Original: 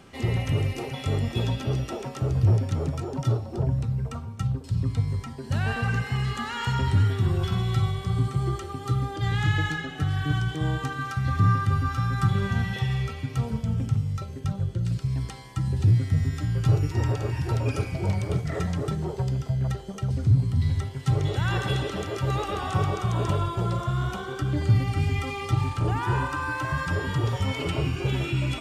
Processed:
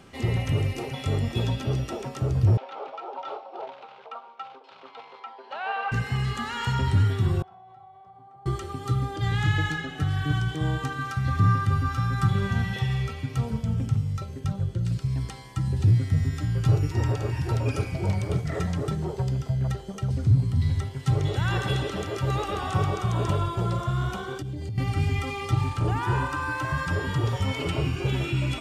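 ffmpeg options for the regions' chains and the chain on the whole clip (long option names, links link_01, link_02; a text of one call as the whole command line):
ffmpeg -i in.wav -filter_complex "[0:a]asettb=1/sr,asplit=3[link_01][link_02][link_03];[link_01]atrim=end=2.574[link_04];[link_02]atrim=start=2.57:end=5.92,asetpts=PTS-STARTPTS,afade=type=in:duration=0.004:curve=qsin,afade=type=out:start_time=3.346:duration=0.004:curve=qsin,acrusher=bits=6:mode=log:mix=0:aa=0.000001,highpass=frequency=500:width=0.5412,highpass=frequency=500:width=1.3066,equalizer=frequency=830:width_type=q:width=4:gain=9,equalizer=frequency=1300:width_type=q:width=4:gain=4,equalizer=frequency=1800:width_type=q:width=4:gain=-7,lowpass=frequency=3400:width=0.5412,lowpass=frequency=3400:width=1.3066[link_05];[link_03]atrim=start=5.916[link_06];[link_04][link_05]acrossfade=duration=0.004:curve1=hsin:curve2=qsin[link_07];[link_07][link_06]acrossfade=duration=0.004:curve1=qsin:curve2=hsin,asettb=1/sr,asplit=3[link_08][link_09][link_10];[link_08]atrim=end=7.424[link_11];[link_09]atrim=start=7.42:end=8.46,asetpts=PTS-STARTPTS,afade=type=in:duration=0.004:curve=qsin,afade=type=out:start_time=1.036:duration=0.004:curve=qsin,bandpass=frequency=760:width_type=q:width=8.5,acompressor=threshold=-46dB:ratio=4:attack=3.2:release=140:knee=1:detection=peak[link_12];[link_10]atrim=start=8.456[link_13];[link_11][link_12]acrossfade=duration=0.004:curve1=hsin:curve2=qsin[link_14];[link_14][link_13]acrossfade=duration=0.004:curve1=qsin:curve2=hsin,asettb=1/sr,asplit=3[link_15][link_16][link_17];[link_15]atrim=end=24.384[link_18];[link_16]atrim=start=24.38:end=24.78,asetpts=PTS-STARTPTS,afade=type=in:duration=0.004:curve=qsin,afade=type=out:start_time=0.396:duration=0.004:curve=qsin,equalizer=frequency=1300:width=1.3:gain=-14,bandreject=frequency=3300:width=22,acompressor=threshold=-29dB:ratio=16:attack=3.2:release=140:knee=1:detection=peak[link_19];[link_17]atrim=start=24.776[link_20];[link_18][link_19]acrossfade=duration=0.004:curve1=hsin:curve2=qsin[link_21];[link_21][link_20]acrossfade=duration=0.004:curve1=qsin:curve2=hsin" out.wav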